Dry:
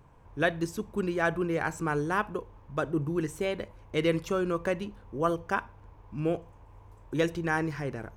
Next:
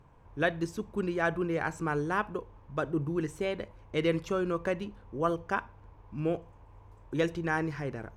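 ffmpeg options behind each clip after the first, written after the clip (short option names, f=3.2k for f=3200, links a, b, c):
-af "highshelf=f=9.6k:g=-10.5,volume=-1.5dB"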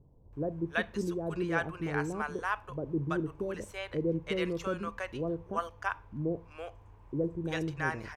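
-filter_complex "[0:a]acrossover=split=620[a][b];[b]adelay=330[c];[a][c]amix=inputs=2:normalize=0,volume=-1dB"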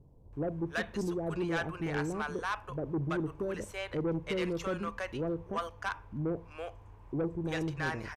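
-af "aresample=32000,aresample=44100,asoftclip=type=tanh:threshold=-28.5dB,volume=2dB"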